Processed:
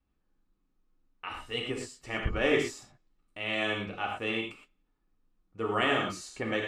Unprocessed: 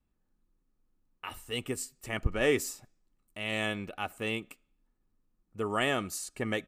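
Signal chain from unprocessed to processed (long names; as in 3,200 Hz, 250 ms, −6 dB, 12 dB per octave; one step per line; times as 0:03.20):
low-pass filter 4,600 Hz 12 dB per octave
low-shelf EQ 320 Hz −3.5 dB
reverb whose tail is shaped and stops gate 140 ms flat, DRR −0.5 dB
saturating transformer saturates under 100 Hz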